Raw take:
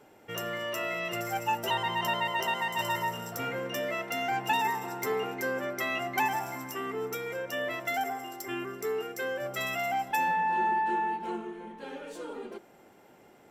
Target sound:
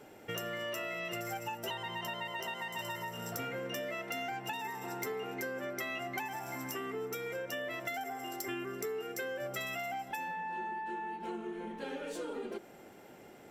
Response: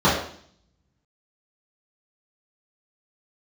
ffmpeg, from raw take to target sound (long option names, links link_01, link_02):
-af "acompressor=threshold=-39dB:ratio=6,equalizer=frequency=1000:width_type=o:width=0.67:gain=-4,volume=3.5dB"